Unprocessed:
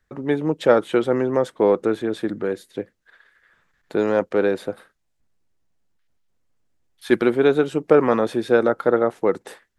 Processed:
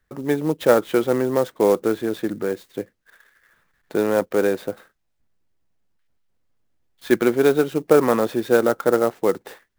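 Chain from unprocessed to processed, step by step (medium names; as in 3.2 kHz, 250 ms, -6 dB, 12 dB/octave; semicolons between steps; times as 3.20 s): sampling jitter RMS 0.025 ms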